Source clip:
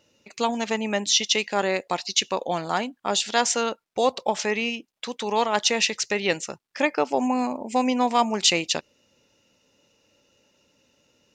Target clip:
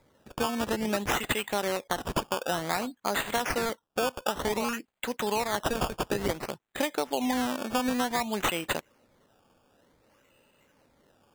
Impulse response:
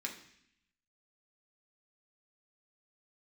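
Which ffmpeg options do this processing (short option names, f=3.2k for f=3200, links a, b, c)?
-af "acrusher=samples=15:mix=1:aa=0.000001:lfo=1:lforange=15:lforate=0.55,acompressor=threshold=-24dB:ratio=10"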